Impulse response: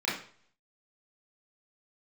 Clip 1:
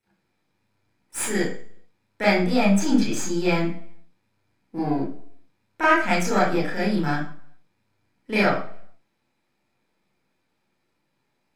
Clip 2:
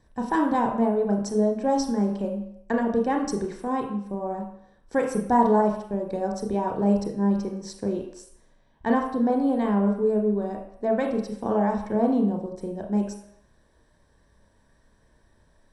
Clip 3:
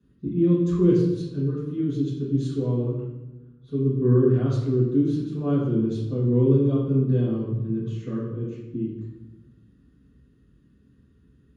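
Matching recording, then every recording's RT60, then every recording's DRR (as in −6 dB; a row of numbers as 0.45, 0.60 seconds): 1; 0.50 s, non-exponential decay, 1.1 s; −8.5, 1.5, −9.5 decibels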